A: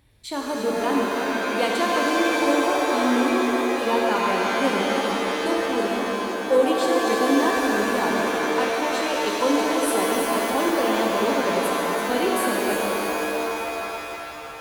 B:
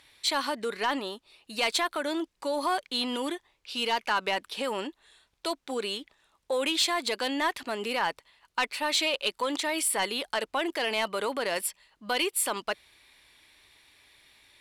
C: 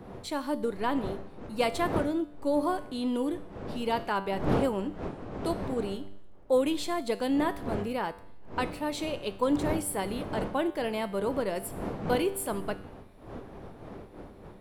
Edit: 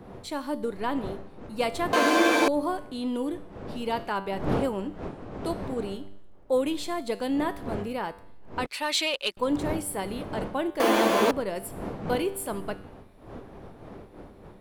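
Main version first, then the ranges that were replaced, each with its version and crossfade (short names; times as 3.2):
C
1.93–2.48 from A
8.66–9.37 from B
10.8–11.31 from A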